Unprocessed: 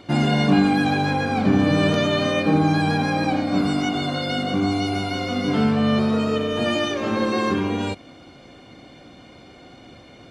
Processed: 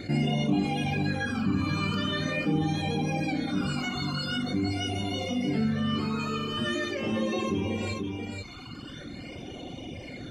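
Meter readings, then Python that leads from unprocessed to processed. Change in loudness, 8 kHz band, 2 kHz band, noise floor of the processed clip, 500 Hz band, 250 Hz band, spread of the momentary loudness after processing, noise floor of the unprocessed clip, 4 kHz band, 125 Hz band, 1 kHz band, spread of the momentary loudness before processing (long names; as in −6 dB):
−8.0 dB, −5.0 dB, −7.0 dB, −42 dBFS, −10.0 dB, −8.0 dB, 13 LU, −46 dBFS, −5.5 dB, −6.0 dB, −10.5 dB, 6 LU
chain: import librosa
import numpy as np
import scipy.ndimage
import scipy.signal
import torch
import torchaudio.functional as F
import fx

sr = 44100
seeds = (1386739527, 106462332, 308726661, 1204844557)

p1 = fx.dereverb_blind(x, sr, rt60_s=1.8)
p2 = fx.phaser_stages(p1, sr, stages=12, low_hz=570.0, high_hz=1600.0, hz=0.44, feedback_pct=25)
p3 = p2 + fx.echo_multitap(p2, sr, ms=(49, 488), db=(-13.0, -9.5), dry=0)
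p4 = fx.env_flatten(p3, sr, amount_pct=50)
y = p4 * librosa.db_to_amplitude(-8.0)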